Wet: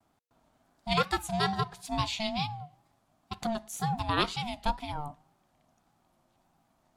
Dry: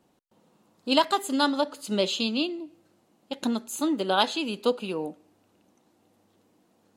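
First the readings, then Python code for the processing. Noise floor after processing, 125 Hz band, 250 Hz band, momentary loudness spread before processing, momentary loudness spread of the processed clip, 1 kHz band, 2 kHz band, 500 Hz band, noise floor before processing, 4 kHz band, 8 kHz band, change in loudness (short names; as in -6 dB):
-72 dBFS, +8.5 dB, -8.5 dB, 13 LU, 15 LU, -2.5 dB, -2.5 dB, -9.0 dB, -67 dBFS, -6.0 dB, -5.0 dB, -5.0 dB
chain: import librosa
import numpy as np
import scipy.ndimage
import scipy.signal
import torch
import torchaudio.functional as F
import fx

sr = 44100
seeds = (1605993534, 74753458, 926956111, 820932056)

y = x * np.sin(2.0 * np.pi * 460.0 * np.arange(len(x)) / sr)
y = fx.wow_flutter(y, sr, seeds[0], rate_hz=2.1, depth_cents=86.0)
y = y * librosa.db_to_amplitude(-2.0)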